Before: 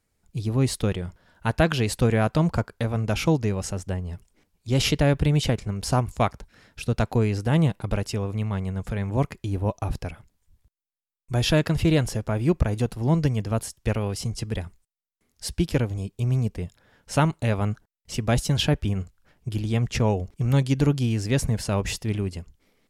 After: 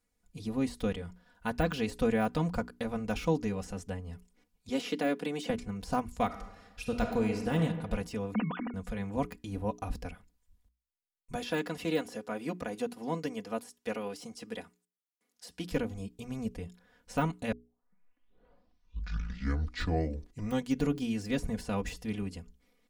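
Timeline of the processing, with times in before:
4.69–5.50 s: high-pass 220 Hz 24 dB/octave
6.25–7.63 s: reverb throw, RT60 1.2 s, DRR 5 dB
8.34–8.74 s: formants replaced by sine waves
11.35–15.71 s: high-pass 260 Hz
17.52 s: tape start 3.27 s
whole clip: hum notches 60/120/180/240/300/360/420 Hz; de-esser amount 80%; comb 4.1 ms, depth 83%; trim -8.5 dB

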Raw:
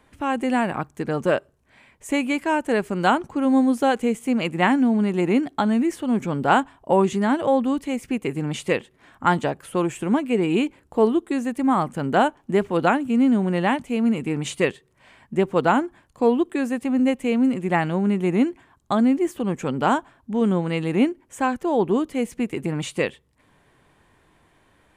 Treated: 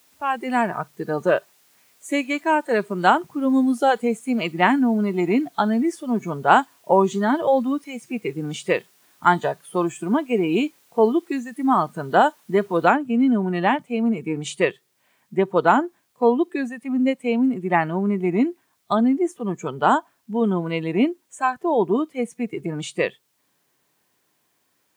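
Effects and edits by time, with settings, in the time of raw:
12.91 s: noise floor step -46 dB -57 dB
whole clip: high-pass 160 Hz 12 dB/octave; spectral noise reduction 13 dB; dynamic bell 1 kHz, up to +4 dB, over -33 dBFS, Q 0.79

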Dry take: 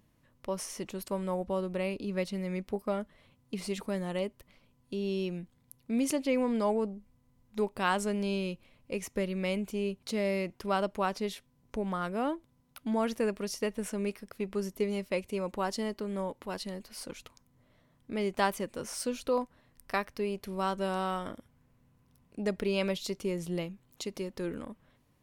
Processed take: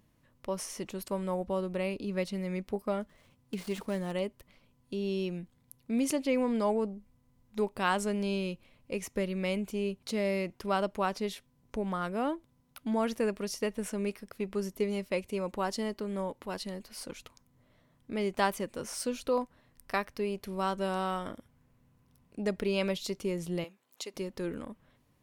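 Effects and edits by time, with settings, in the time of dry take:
3.02–4.12 s: dead-time distortion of 0.099 ms
23.64–24.14 s: high-pass 480 Hz

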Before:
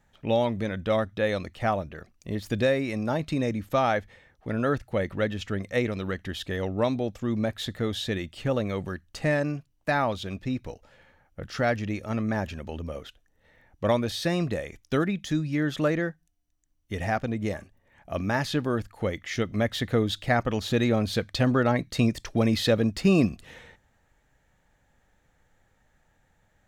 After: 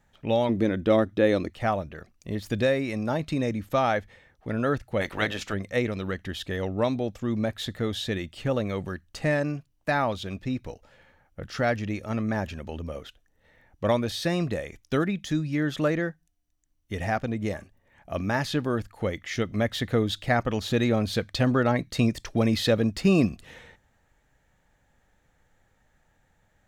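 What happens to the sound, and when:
0.49–1.50 s: peaking EQ 320 Hz +12 dB 0.99 oct
5.00–5.52 s: spectral peaks clipped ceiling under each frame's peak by 20 dB

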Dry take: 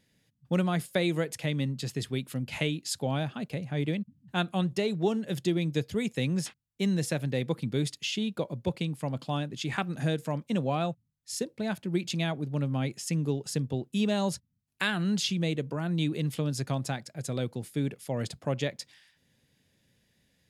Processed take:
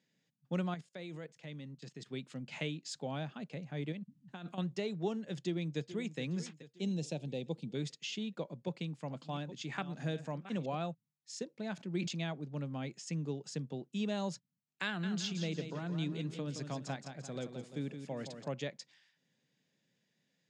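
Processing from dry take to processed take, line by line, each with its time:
0.74–2.06 s: level held to a coarse grid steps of 18 dB
3.92–4.58 s: compressor with a negative ratio -36 dBFS
5.36–6.19 s: echo throw 430 ms, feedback 50%, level -13 dB
6.81–7.75 s: high-order bell 1.5 kHz -14.5 dB 1.2 oct
8.57–10.75 s: chunks repeated in reverse 522 ms, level -13 dB
11.74–12.15 s: decay stretcher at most 57 dB/s
14.86–18.48 s: feedback delay 171 ms, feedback 40%, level -8 dB
whole clip: elliptic band-pass 150–7100 Hz, stop band 40 dB; de-esser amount 60%; trim -8 dB

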